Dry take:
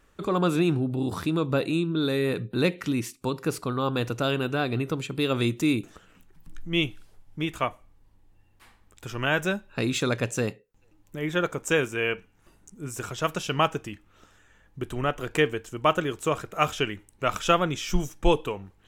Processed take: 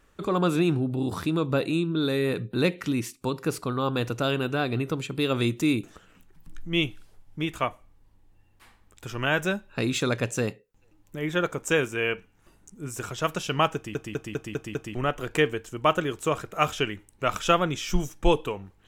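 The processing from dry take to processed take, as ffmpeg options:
-filter_complex "[0:a]asplit=7[a][b][c][d][e][f][g];[a]atrim=end=13.952[h];[b]atrim=start=13.748:end=13.952[i];[c]atrim=start=13.748:end=13.952[j];[d]atrim=start=13.748:end=13.952[k];[e]atrim=start=13.748:end=13.952[l];[f]atrim=start=13.748:end=13.952[m];[g]atrim=start=14.948[n];[h][i]acrossfade=d=0.004:c1=hsin:c2=hsin[o];[o][j]acrossfade=d=0.004:c1=hsin:c2=hsin[p];[p][k]acrossfade=d=0.004:c1=hsin:c2=hsin[q];[q][l]acrossfade=d=0.004:c1=hsin:c2=hsin[r];[r][m]acrossfade=d=0.004:c1=hsin:c2=hsin[s];[s][n]acrossfade=d=0.004:c1=hsin:c2=hsin"

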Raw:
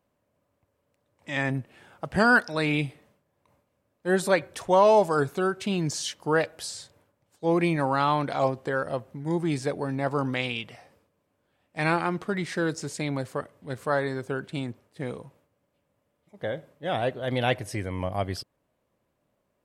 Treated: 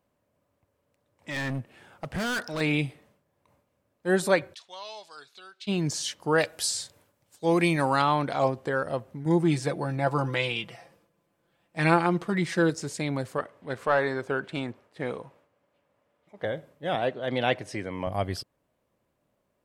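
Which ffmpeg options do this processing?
-filter_complex "[0:a]asettb=1/sr,asplit=3[a][b][c];[a]atrim=end=1.304[d];[b]atrim=start=1.3:end=2.61,asetpts=PTS-STARTPTS,afade=t=in:d=0.004:c=qsin,afade=t=out:st=1.306:d=0.004:c=qsin,volume=27.5dB,asoftclip=hard,volume=-27.5dB[e];[c]atrim=start=2.606[f];[d][e]acrossfade=d=0.004:c1=hsin:c2=qsin[g];[g][f]acrossfade=d=0.004:c1=qsin:c2=hsin,asplit=3[h][i][j];[h]afade=t=out:st=4.53:d=0.02[k];[i]bandpass=f=4k:t=q:w=3.1,afade=t=in:st=4.53:d=0.02,afade=t=out:st=5.67:d=0.02[l];[j]afade=t=in:st=5.67:d=0.02[m];[k][l][m]amix=inputs=3:normalize=0,asettb=1/sr,asplit=3[n][o][p];[n]atrim=end=6.384[q];[o]atrim=start=6.38:end=8.02,asetpts=PTS-STARTPTS,afade=t=in:d=0.004:c=qsin,afade=t=out:st=1.636:d=0.004:c=qsin,highshelf=f=2.8k:g=9.5[r];[p]atrim=start=8.016[s];[q][r]acrossfade=d=0.004:c1=hsin:c2=qsin[t];[t][s]acrossfade=d=0.004:c1=qsin:c2=hsin,asettb=1/sr,asplit=3[u][v][w];[u]atrim=end=9.254[x];[v]atrim=start=9.25:end=12.7,asetpts=PTS-STARTPTS,afade=t=in:d=0.004:c=qsin,afade=t=out:st=3.446:d=0.004:c=qsin,aecho=1:1:5.9:0.65,atrim=end_sample=152145[y];[w]atrim=start=12.696[z];[x][y]acrossfade=d=0.004:c1=hsin:c2=qsin[aa];[aa][z]acrossfade=d=0.004:c1=qsin:c2=hsin,asettb=1/sr,asplit=3[ab][ac][ad];[ab]atrim=end=13.384[ae];[ac]atrim=start=13.38:end=16.45,asetpts=PTS-STARTPTS,afade=t=in:d=0.004:c=qsin,afade=t=out:st=3.066:d=0.004:c=qsin,asplit=2[af][ag];[ag]highpass=f=720:p=1,volume=12dB,asoftclip=type=tanh:threshold=-11dB[ah];[af][ah]amix=inputs=2:normalize=0,lowpass=f=2.1k:p=1,volume=-6dB[ai];[ad]atrim=start=16.446[aj];[ae][ai]acrossfade=d=0.004:c1=hsin:c2=qsin[ak];[ak][aj]acrossfade=d=0.004:c1=qsin:c2=hsin,asettb=1/sr,asplit=3[al][am][an];[al]atrim=end=16.954[ao];[am]atrim=start=16.95:end=18.07,asetpts=PTS-STARTPTS,afade=t=in:d=0.004:c=qsin,afade=t=out:st=1.116:d=0.004:c=qsin,highpass=160,lowpass=6.7k[ap];[an]atrim=start=18.066[aq];[ao][ap]acrossfade=d=0.004:c1=hsin:c2=qsin[ar];[ar][aq]acrossfade=d=0.004:c1=qsin:c2=hsin"

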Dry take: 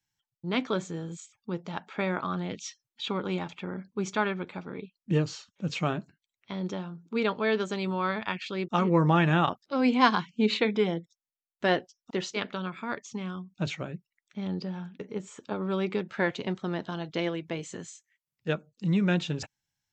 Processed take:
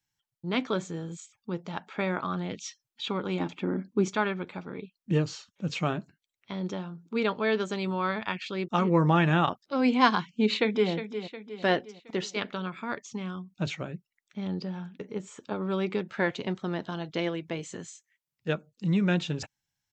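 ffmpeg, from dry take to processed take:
-filter_complex "[0:a]asettb=1/sr,asplit=3[a][b][c];[a]atrim=end=3.404[d];[b]atrim=start=3.4:end=4.08,asetpts=PTS-STARTPTS,afade=t=in:d=0.004:c=qsin,afade=t=out:st=0.676:d=0.004:c=qsin,equalizer=f=290:t=o:w=0.94:g=13[e];[c]atrim=start=4.076[f];[d][e]acrossfade=d=0.004:c1=hsin:c2=qsin[g];[g][f]acrossfade=d=0.004:c1=qsin:c2=hsin,asplit=2[h][i];[i]afade=t=in:st=10.31:d=0.01,afade=t=out:st=10.91:d=0.01,aecho=0:1:360|720|1080|1440|1800:0.298538|0.149269|0.0746346|0.0373173|0.0186586[j];[h][j]amix=inputs=2:normalize=0"

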